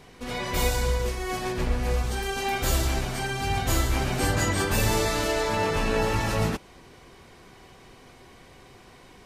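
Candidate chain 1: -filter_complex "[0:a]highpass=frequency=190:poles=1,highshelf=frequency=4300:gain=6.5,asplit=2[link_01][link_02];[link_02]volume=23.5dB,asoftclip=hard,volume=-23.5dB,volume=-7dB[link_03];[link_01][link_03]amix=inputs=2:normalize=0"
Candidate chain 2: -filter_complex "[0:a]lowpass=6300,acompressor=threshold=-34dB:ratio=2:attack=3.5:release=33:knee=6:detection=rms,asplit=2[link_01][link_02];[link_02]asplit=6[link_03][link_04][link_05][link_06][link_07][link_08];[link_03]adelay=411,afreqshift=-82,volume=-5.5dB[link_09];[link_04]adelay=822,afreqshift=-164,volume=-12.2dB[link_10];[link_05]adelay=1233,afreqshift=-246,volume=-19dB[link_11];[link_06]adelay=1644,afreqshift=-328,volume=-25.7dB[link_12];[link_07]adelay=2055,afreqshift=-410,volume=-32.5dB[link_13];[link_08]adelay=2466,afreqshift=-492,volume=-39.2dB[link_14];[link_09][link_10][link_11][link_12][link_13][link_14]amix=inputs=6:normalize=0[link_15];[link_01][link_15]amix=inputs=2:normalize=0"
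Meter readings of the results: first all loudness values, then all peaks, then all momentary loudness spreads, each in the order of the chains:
−23.5, −32.0 LKFS; −11.0, −17.0 dBFS; 7, 18 LU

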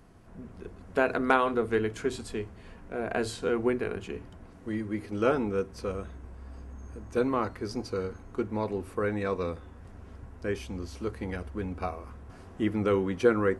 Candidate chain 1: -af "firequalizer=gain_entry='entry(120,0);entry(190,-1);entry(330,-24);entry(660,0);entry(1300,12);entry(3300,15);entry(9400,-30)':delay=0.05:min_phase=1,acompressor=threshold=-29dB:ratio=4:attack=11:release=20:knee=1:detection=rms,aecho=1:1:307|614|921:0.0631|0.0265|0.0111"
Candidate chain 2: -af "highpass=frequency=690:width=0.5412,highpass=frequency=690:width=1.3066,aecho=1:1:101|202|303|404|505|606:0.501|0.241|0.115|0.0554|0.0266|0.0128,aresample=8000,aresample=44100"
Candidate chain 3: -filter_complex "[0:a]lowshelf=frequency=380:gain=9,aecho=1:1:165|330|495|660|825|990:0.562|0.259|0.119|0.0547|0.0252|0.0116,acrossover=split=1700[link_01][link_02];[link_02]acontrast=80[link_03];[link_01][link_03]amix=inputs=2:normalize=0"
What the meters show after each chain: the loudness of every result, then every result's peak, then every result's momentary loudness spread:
−32.0, −35.5, −25.0 LKFS; −11.5, −10.0, −4.0 dBFS; 16, 17, 16 LU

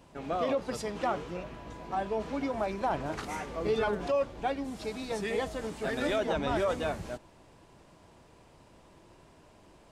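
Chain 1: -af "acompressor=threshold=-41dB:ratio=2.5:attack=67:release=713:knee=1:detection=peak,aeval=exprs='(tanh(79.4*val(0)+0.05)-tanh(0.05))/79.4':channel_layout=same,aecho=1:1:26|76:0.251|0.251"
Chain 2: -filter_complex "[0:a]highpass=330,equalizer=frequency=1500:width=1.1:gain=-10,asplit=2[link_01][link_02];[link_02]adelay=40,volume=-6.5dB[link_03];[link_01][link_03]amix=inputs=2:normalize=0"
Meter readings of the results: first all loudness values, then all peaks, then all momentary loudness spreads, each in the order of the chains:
−43.5, −35.0 LKFS; −34.5, −20.0 dBFS; 15, 9 LU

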